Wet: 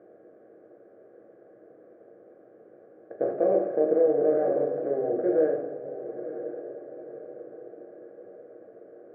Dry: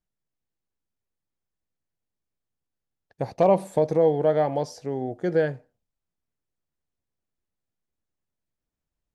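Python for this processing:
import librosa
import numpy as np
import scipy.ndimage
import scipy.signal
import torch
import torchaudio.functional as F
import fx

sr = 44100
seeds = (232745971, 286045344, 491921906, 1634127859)

p1 = fx.bin_compress(x, sr, power=0.4)
p2 = scipy.signal.sosfilt(scipy.signal.ellip(3, 1.0, 80, [130.0, 1400.0], 'bandpass', fs=sr, output='sos'), p1)
p3 = fx.fixed_phaser(p2, sr, hz=390.0, stages=4)
p4 = p3 + fx.echo_diffused(p3, sr, ms=993, feedback_pct=47, wet_db=-11.5, dry=0)
p5 = fx.room_shoebox(p4, sr, seeds[0], volume_m3=85.0, walls='mixed', distance_m=0.69)
y = p5 * 10.0 ** (-6.5 / 20.0)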